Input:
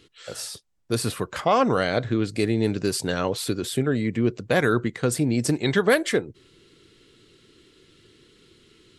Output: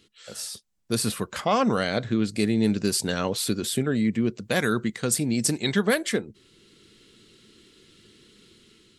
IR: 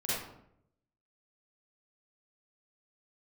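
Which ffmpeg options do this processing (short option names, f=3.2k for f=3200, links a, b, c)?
-af "asetnsamples=n=441:p=0,asendcmd='4.42 highshelf g 12;5.72 highshelf g 6.5',highshelf=f=2.8k:g=7,dynaudnorm=f=230:g=5:m=5.5dB,equalizer=f=210:t=o:w=0.29:g=10,volume=-7.5dB"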